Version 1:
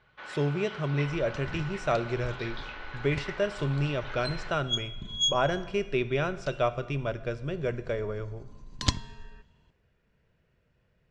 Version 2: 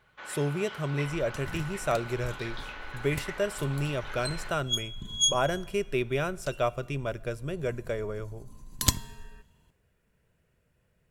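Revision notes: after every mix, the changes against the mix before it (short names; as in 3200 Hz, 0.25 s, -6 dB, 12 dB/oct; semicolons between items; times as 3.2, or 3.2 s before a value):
speech: send -8.5 dB; master: remove LPF 5500 Hz 24 dB/oct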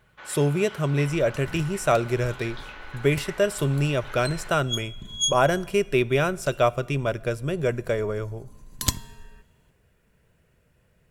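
speech +7.0 dB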